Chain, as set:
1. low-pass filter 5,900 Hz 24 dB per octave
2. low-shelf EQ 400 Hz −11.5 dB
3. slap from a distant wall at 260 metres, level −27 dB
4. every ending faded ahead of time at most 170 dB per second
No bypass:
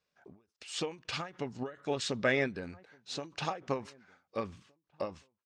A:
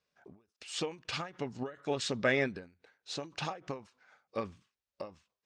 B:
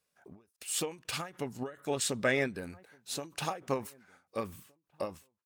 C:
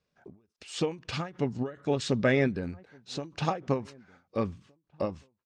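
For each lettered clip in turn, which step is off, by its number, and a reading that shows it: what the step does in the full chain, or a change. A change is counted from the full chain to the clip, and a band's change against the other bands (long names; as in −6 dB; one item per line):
3, change in momentary loudness spread +3 LU
1, 8 kHz band +9.0 dB
2, 125 Hz band +8.5 dB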